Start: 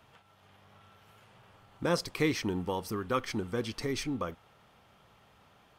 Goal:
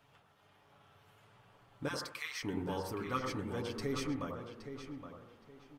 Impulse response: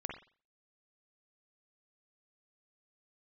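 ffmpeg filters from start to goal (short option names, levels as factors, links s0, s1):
-filter_complex "[0:a]asettb=1/sr,asplit=3[s0][s1][s2];[s0]atrim=end=1.884[s3];[s1]atrim=start=1.88:end=2.43,asetpts=PTS-STARTPTS,afade=t=in:d=0.004:c=qsin,afade=t=out:st=0.546:d=0.004:c=qsin,highpass=f=1100:w=0.5412,highpass=f=1100:w=1.3066[s4];[s2]atrim=start=2.426[s5];[s3][s4]acrossfade=d=0.004:c1=hsin:c2=qsin[s6];[s6][s5]acrossfade=d=0.004:c1=qsin:c2=hsin,asplit=2[s7][s8];[s8]adelay=819,lowpass=f=3800:p=1,volume=0.355,asplit=2[s9][s10];[s10]adelay=819,lowpass=f=3800:p=1,volume=0.26,asplit=2[s11][s12];[s12]adelay=819,lowpass=f=3800:p=1,volume=0.26[s13];[s7][s9][s11][s13]amix=inputs=4:normalize=0,asplit=2[s14][s15];[1:a]atrim=start_sample=2205,asetrate=25137,aresample=44100,adelay=7[s16];[s15][s16]afir=irnorm=-1:irlink=0,volume=0.631[s17];[s14][s17]amix=inputs=2:normalize=0,volume=0.447"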